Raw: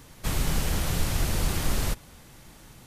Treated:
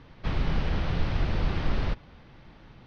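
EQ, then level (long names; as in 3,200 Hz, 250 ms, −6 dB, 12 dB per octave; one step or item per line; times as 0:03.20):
Savitzky-Golay smoothing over 15 samples
high-frequency loss of the air 210 metres
0.0 dB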